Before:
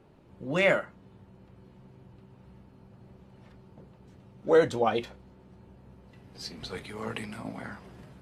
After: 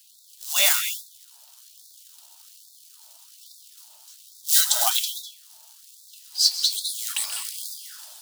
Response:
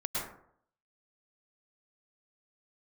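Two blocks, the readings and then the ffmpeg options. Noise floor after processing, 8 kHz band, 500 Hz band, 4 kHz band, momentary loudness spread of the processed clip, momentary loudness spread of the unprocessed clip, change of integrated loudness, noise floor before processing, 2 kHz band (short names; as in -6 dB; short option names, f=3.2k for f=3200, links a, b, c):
-52 dBFS, n/a, -15.5 dB, +19.0 dB, 18 LU, 20 LU, +7.5 dB, -56 dBFS, +0.5 dB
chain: -filter_complex "[0:a]acrusher=bits=5:mode=log:mix=0:aa=0.000001,aexciter=amount=6.4:drive=9.7:freq=3.3k,asplit=2[a][b];[1:a]atrim=start_sample=2205,asetrate=70560,aresample=44100,adelay=133[c];[b][c]afir=irnorm=-1:irlink=0,volume=-7.5dB[d];[a][d]amix=inputs=2:normalize=0,afftfilt=real='re*gte(b*sr/1024,580*pow(3500/580,0.5+0.5*sin(2*PI*1.2*pts/sr)))':imag='im*gte(b*sr/1024,580*pow(3500/580,0.5+0.5*sin(2*PI*1.2*pts/sr)))':win_size=1024:overlap=0.75"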